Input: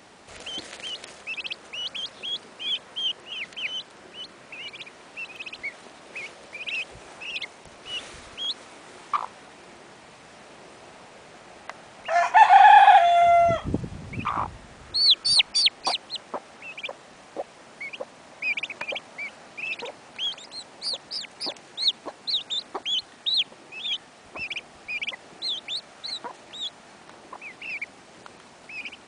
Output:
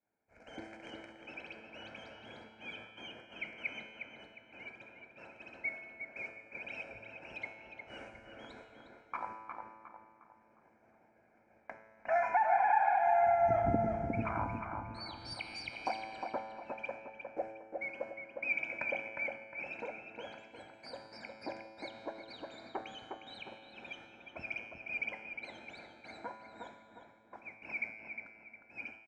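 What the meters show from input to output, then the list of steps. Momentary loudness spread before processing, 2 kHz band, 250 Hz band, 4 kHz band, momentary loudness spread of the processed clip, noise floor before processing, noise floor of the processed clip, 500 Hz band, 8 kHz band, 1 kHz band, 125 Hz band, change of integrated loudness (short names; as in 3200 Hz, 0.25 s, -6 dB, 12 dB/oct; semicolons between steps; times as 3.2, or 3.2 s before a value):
21 LU, -10.5 dB, -3.5 dB, -27.0 dB, 22 LU, -50 dBFS, -66 dBFS, -8.5 dB, under -25 dB, -13.5 dB, -5.0 dB, -13.5 dB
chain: expander -35 dBFS; air absorption 85 m; resonator 110 Hz, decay 1.5 s, harmonics all, mix 80%; compressor 6:1, threshold -35 dBFS, peak gain reduction 14 dB; comb 1.3 ms, depth 72%; AGC gain up to 4 dB; EQ curve 170 Hz 0 dB, 380 Hz +13 dB, 540 Hz +4 dB, 780 Hz -1 dB, 2300 Hz +2 dB, 3400 Hz -25 dB, 5400 Hz -10 dB; darkening echo 0.358 s, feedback 42%, low-pass 2500 Hz, level -4.5 dB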